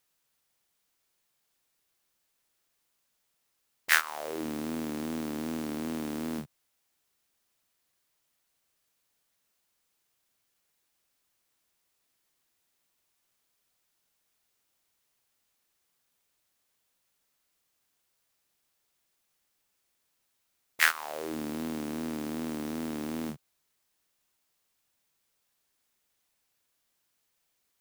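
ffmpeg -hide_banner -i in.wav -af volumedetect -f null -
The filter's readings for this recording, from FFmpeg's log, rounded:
mean_volume: -40.1 dB
max_volume: -3.0 dB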